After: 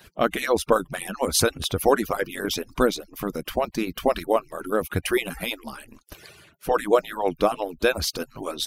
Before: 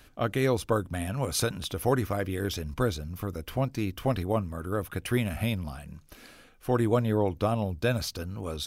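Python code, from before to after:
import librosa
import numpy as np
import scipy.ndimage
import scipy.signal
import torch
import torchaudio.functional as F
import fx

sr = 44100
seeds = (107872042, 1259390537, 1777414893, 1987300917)

y = fx.hpss_only(x, sr, part='percussive')
y = F.gain(torch.from_numpy(y), 8.0).numpy()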